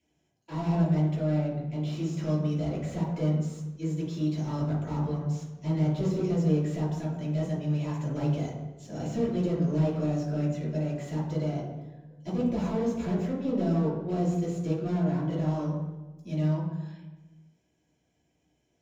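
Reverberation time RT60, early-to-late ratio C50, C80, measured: 1.2 s, 2.5 dB, 5.0 dB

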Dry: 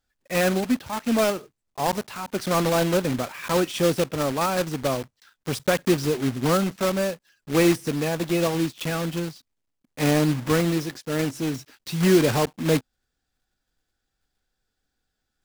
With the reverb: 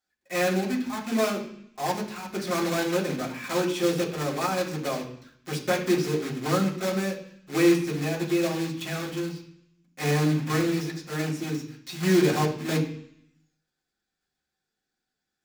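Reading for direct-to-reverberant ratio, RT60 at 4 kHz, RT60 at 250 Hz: -3.0 dB, 0.80 s, 0.90 s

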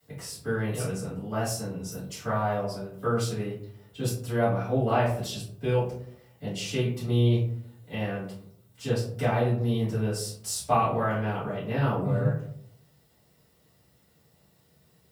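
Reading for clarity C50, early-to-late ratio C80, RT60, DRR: 4.5 dB, 8.5 dB, 0.65 s, -12.0 dB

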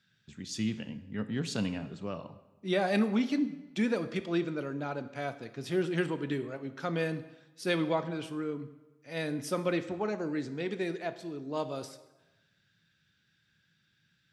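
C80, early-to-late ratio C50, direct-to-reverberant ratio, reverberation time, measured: 15.0 dB, 13.5 dB, 11.0 dB, 1.1 s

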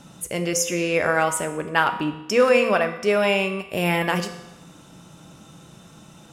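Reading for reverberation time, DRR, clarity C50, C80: 0.95 s, 7.0 dB, 10.5 dB, 12.5 dB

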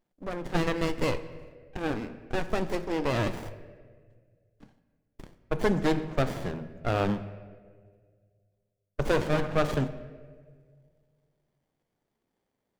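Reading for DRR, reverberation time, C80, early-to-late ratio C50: 12.0 dB, 1.8 s, 14.5 dB, 13.5 dB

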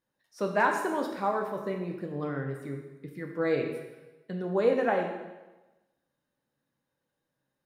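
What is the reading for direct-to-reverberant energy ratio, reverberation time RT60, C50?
2.0 dB, 1.1 s, 5.5 dB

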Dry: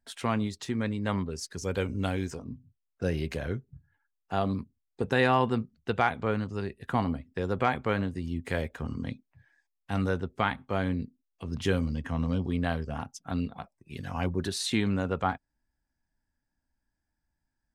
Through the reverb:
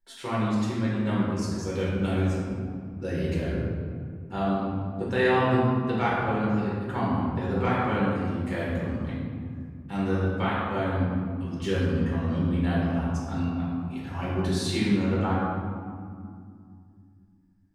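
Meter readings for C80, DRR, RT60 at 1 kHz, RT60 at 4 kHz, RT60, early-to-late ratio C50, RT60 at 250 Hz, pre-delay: 0.5 dB, -7.5 dB, 2.2 s, 1.1 s, 2.3 s, -1.5 dB, 3.7 s, 3 ms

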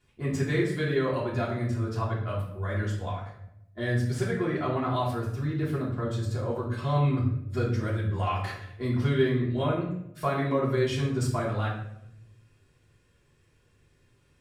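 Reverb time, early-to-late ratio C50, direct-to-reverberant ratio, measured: 0.80 s, 4.5 dB, -6.5 dB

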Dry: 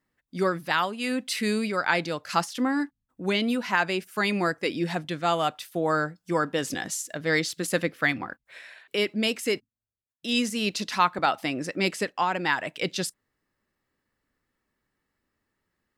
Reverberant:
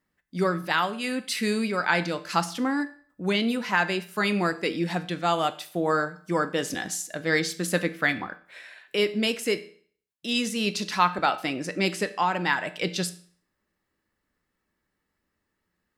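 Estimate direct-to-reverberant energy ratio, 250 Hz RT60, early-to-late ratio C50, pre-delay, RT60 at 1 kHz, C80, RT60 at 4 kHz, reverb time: 10.0 dB, 0.50 s, 16.0 dB, 5 ms, 0.50 s, 19.5 dB, 0.50 s, 0.50 s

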